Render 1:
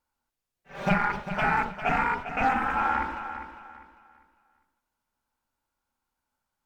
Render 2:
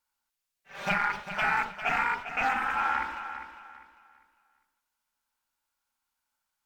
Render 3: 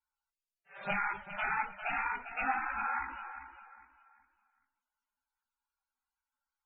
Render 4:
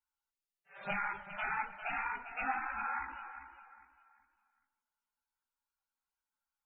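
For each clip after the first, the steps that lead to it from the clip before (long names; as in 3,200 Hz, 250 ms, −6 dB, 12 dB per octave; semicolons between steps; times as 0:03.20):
tilt shelving filter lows −7.5 dB, about 860 Hz; level −4 dB
multi-voice chorus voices 6, 0.83 Hz, delay 17 ms, depth 2.8 ms; spectral peaks only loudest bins 64; level −3 dB
tape delay 152 ms, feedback 59%, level −17 dB, low-pass 2,000 Hz; level −3 dB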